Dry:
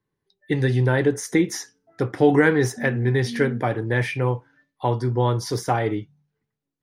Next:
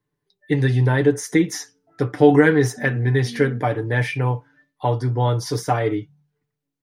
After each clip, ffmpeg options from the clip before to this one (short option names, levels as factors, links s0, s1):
-af "aecho=1:1:6.8:0.54"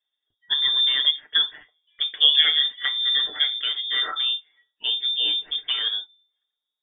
-af "lowpass=f=3100:t=q:w=0.5098,lowpass=f=3100:t=q:w=0.6013,lowpass=f=3100:t=q:w=0.9,lowpass=f=3100:t=q:w=2.563,afreqshift=-3700,equalizer=f=160:t=o:w=0.67:g=-7,equalizer=f=400:t=o:w=0.67:g=7,equalizer=f=2500:t=o:w=0.67:g=-11"